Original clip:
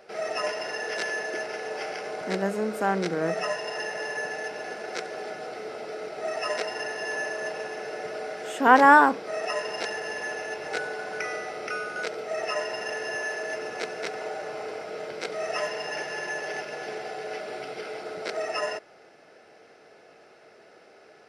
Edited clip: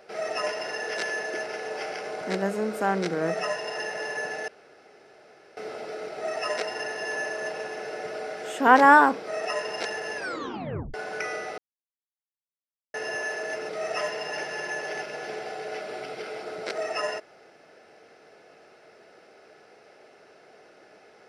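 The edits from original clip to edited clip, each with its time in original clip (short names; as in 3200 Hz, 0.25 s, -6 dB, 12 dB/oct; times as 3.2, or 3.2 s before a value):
4.48–5.57 room tone
10.16 tape stop 0.78 s
11.58–12.94 mute
13.69–15.28 cut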